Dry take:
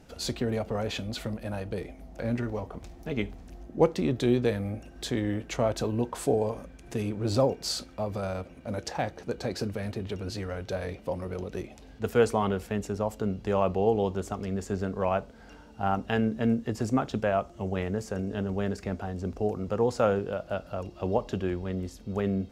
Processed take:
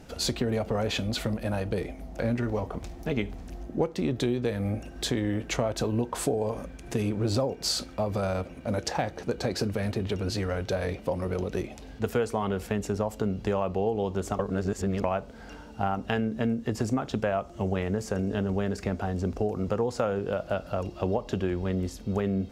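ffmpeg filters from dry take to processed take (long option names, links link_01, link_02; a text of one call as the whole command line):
ffmpeg -i in.wav -filter_complex "[0:a]asplit=3[link_01][link_02][link_03];[link_01]atrim=end=14.392[link_04];[link_02]atrim=start=14.388:end=15.042,asetpts=PTS-STARTPTS,areverse[link_05];[link_03]atrim=start=15.038[link_06];[link_04][link_05]acrossfade=duration=0.004:curve1=hsin:curve2=hsin[link_07];[link_07][link_06]acrossfade=duration=0.004:curve1=hsin:curve2=hsin,acompressor=threshold=-29dB:ratio=6,volume=5.5dB" out.wav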